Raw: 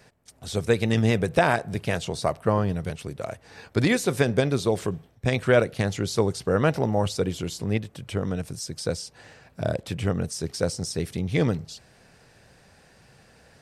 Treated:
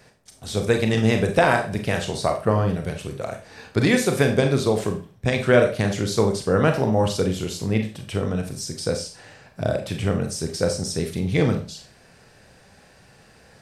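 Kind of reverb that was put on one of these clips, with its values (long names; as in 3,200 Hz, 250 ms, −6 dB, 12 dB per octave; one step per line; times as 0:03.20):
four-comb reverb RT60 0.36 s, combs from 29 ms, DRR 4.5 dB
level +2 dB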